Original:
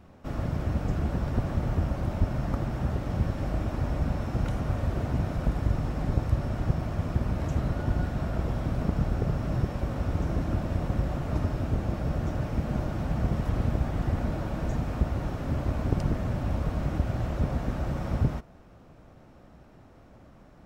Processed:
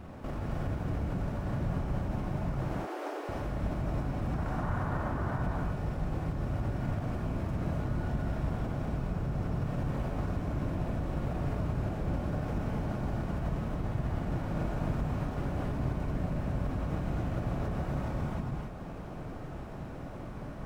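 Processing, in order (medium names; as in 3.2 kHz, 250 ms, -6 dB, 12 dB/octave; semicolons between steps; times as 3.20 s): median filter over 9 samples; compression 6:1, threshold -36 dBFS, peak gain reduction 17 dB; 2.57–3.29 s: steep high-pass 300 Hz 72 dB/octave; peak limiter -36.5 dBFS, peak gain reduction 11 dB; 4.34–5.43 s: FFT filter 510 Hz 0 dB, 930 Hz +9 dB, 1.7 kHz +7 dB, 2.4 kHz -2 dB; gated-style reverb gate 310 ms rising, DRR -2.5 dB; trim +7 dB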